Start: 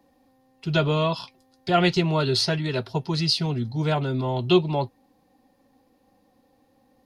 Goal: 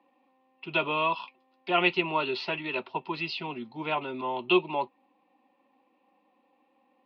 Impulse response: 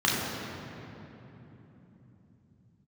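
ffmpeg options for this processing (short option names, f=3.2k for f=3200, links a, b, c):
-af "highpass=f=260:w=0.5412,highpass=f=260:w=1.3066,equalizer=f=270:t=q:w=4:g=-5,equalizer=f=450:t=q:w=4:g=-8,equalizer=f=670:t=q:w=4:g=-5,equalizer=f=1k:t=q:w=4:g=6,equalizer=f=1.6k:t=q:w=4:g=-9,equalizer=f=2.6k:t=q:w=4:g=9,lowpass=f=3k:w=0.5412,lowpass=f=3k:w=1.3066,volume=-1.5dB"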